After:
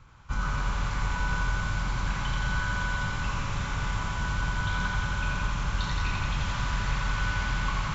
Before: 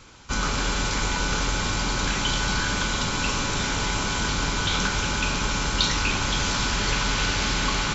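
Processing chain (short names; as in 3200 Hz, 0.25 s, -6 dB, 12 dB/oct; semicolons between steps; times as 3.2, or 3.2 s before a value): EQ curve 140 Hz 0 dB, 240 Hz -12 dB, 410 Hz -15 dB, 1100 Hz -5 dB, 4800 Hz -19 dB; thinning echo 86 ms, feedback 82%, high-pass 500 Hz, level -4 dB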